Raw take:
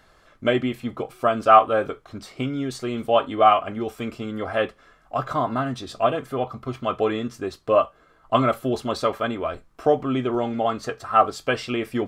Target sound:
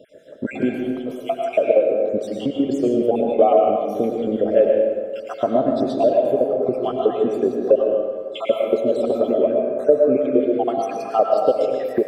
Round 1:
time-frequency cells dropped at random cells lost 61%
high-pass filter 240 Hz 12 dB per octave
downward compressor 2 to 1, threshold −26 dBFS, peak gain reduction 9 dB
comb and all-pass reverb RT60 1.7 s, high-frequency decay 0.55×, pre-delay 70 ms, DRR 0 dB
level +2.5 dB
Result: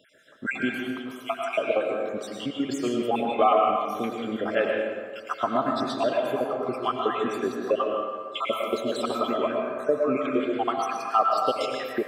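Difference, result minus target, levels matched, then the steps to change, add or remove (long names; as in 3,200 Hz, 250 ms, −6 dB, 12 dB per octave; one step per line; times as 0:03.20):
1,000 Hz band +6.5 dB
add after high-pass filter: low shelf with overshoot 790 Hz +12 dB, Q 3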